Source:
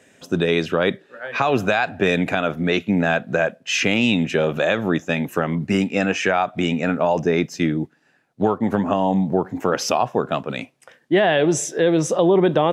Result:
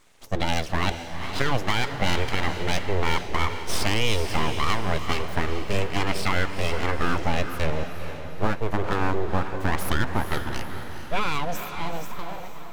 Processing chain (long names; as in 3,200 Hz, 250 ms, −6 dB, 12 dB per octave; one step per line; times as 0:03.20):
fade-out on the ending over 2.09 s
full-wave rectification
feedback delay with all-pass diffusion 451 ms, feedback 48%, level −8.5 dB
level −3 dB